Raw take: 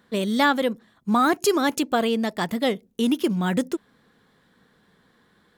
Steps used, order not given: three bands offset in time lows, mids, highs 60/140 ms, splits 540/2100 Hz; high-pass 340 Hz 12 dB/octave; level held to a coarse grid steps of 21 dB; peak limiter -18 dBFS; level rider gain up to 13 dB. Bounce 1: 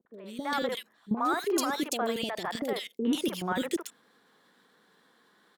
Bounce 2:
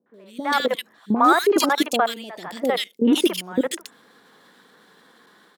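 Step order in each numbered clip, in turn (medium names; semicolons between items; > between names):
level rider > high-pass > level held to a coarse grid > peak limiter > three bands offset in time; level held to a coarse grid > high-pass > peak limiter > three bands offset in time > level rider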